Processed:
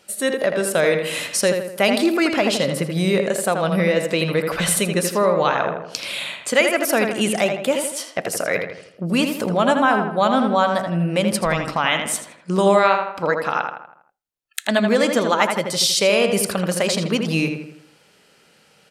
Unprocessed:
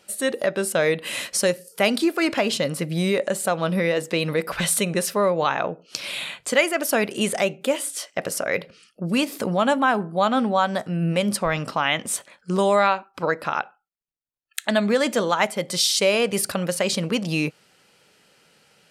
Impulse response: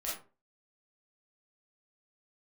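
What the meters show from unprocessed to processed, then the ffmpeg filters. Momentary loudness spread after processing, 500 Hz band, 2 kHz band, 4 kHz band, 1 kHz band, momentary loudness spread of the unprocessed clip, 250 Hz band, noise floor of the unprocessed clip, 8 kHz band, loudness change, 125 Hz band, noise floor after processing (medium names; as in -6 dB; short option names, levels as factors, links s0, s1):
8 LU, +3.5 dB, +3.0 dB, +2.5 dB, +3.0 dB, 8 LU, +3.5 dB, -64 dBFS, +2.0 dB, +3.0 dB, +3.0 dB, -56 dBFS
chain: -filter_complex "[0:a]asplit=2[s0][s1];[s1]adelay=81,lowpass=f=2900:p=1,volume=0.562,asplit=2[s2][s3];[s3]adelay=81,lowpass=f=2900:p=1,volume=0.49,asplit=2[s4][s5];[s5]adelay=81,lowpass=f=2900:p=1,volume=0.49,asplit=2[s6][s7];[s7]adelay=81,lowpass=f=2900:p=1,volume=0.49,asplit=2[s8][s9];[s9]adelay=81,lowpass=f=2900:p=1,volume=0.49,asplit=2[s10][s11];[s11]adelay=81,lowpass=f=2900:p=1,volume=0.49[s12];[s0][s2][s4][s6][s8][s10][s12]amix=inputs=7:normalize=0,volume=1.26"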